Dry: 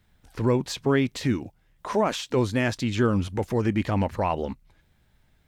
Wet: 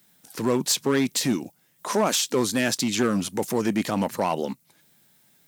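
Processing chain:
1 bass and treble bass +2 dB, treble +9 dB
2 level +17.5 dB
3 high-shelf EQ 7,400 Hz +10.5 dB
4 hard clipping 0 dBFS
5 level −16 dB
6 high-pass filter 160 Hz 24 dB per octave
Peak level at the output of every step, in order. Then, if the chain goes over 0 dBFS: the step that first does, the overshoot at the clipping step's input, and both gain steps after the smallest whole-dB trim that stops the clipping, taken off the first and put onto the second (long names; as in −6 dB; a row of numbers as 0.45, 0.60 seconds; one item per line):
−9.5, +8.0, +8.5, 0.0, −16.0, −9.5 dBFS
step 2, 8.5 dB
step 2 +8.5 dB, step 5 −7 dB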